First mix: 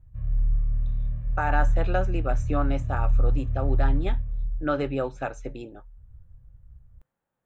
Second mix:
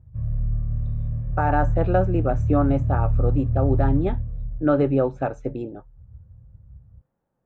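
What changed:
background: add high-pass filter 77 Hz 12 dB per octave
master: add tilt shelving filter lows +9.5 dB, about 1,400 Hz

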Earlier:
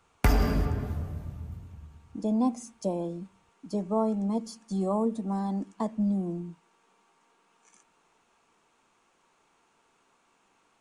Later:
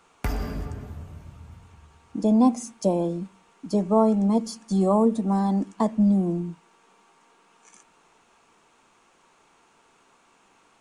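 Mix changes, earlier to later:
speech +7.5 dB
background −5.5 dB

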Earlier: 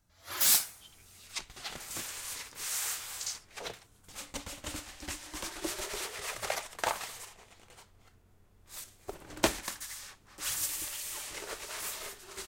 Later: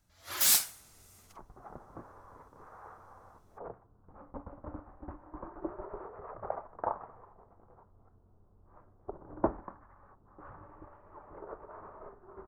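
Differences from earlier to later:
speech: muted
second sound: add Butterworth low-pass 1,200 Hz 36 dB per octave

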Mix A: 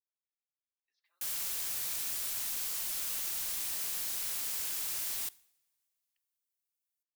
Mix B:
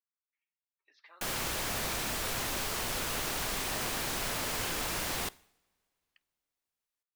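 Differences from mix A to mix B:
speech +11.0 dB
master: remove first-order pre-emphasis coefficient 0.9

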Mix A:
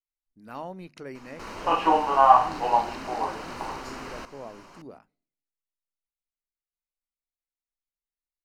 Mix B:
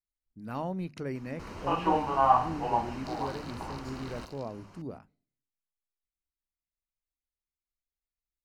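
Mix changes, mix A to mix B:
first sound −7.5 dB
second sound: entry +0.55 s
master: add parametric band 85 Hz +13 dB 2.8 octaves

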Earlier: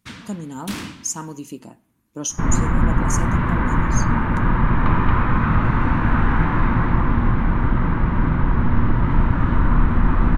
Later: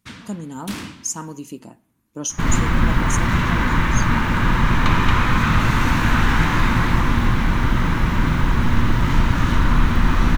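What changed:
first sound: send −6.5 dB
second sound: remove low-pass filter 1,400 Hz 12 dB per octave

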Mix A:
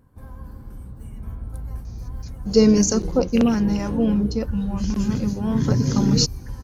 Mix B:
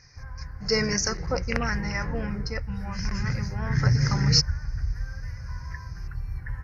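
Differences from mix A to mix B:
speech: entry −1.85 s
master: add drawn EQ curve 150 Hz 0 dB, 220 Hz −17 dB, 1,100 Hz 0 dB, 2,000 Hz +13 dB, 3,400 Hz −17 dB, 5,200 Hz +6 dB, 7,400 Hz −16 dB

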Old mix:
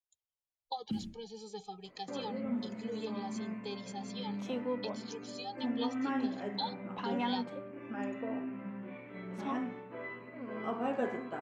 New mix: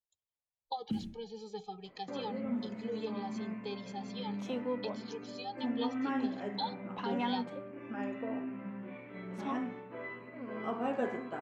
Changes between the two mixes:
speech: add high-frequency loss of the air 120 metres
reverb: on, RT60 0.60 s

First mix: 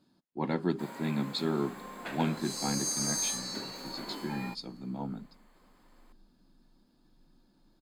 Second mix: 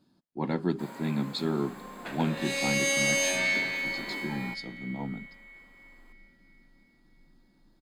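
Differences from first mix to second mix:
second sound: remove linear-phase brick-wall band-stop 170–3,900 Hz
master: add low-shelf EQ 250 Hz +3.5 dB

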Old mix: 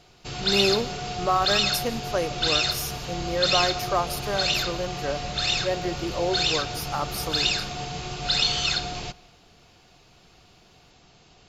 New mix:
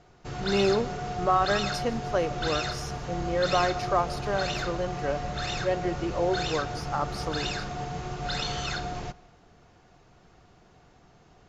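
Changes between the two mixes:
background: add flat-topped bell 3,400 Hz −8.5 dB 1.3 octaves
master: add high-frequency loss of the air 110 metres

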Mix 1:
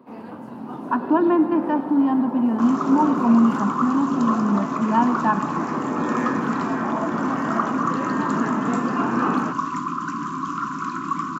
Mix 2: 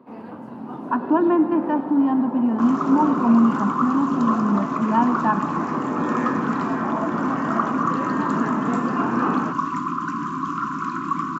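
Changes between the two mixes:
second sound: send +11.0 dB
master: add high-shelf EQ 4,200 Hz −8 dB

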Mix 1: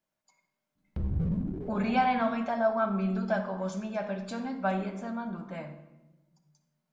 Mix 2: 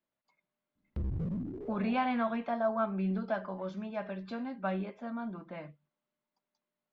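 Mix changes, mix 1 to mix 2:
speech: add low-pass filter 4,100 Hz 24 dB per octave
reverb: off

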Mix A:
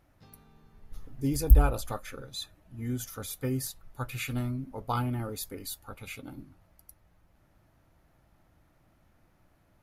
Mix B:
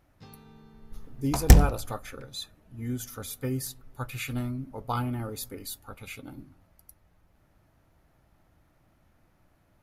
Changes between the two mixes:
first sound +5.5 dB
second sound: remove inverse Chebyshev band-stop filter 260–4,100 Hz, stop band 70 dB
reverb: on, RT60 1.4 s

